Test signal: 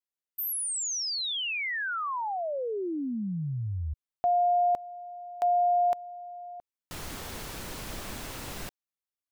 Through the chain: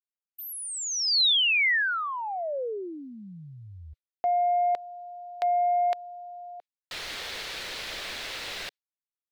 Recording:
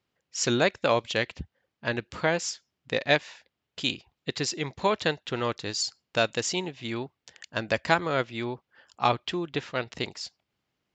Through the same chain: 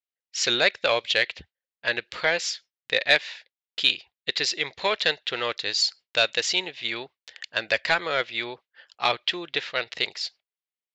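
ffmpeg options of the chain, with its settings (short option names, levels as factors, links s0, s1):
-filter_complex "[0:a]asplit=2[s0][s1];[s1]highpass=f=720:p=1,volume=4.47,asoftclip=type=tanh:threshold=0.596[s2];[s0][s2]amix=inputs=2:normalize=0,lowpass=f=3600:p=1,volume=0.501,equalizer=f=125:t=o:w=1:g=-3,equalizer=f=250:t=o:w=1:g=-5,equalizer=f=500:t=o:w=1:g=4,equalizer=f=1000:t=o:w=1:g=-4,equalizer=f=2000:t=o:w=1:g=6,equalizer=f=4000:t=o:w=1:g=10,agate=range=0.0447:threshold=0.00708:ratio=3:release=166:detection=peak,volume=0.531"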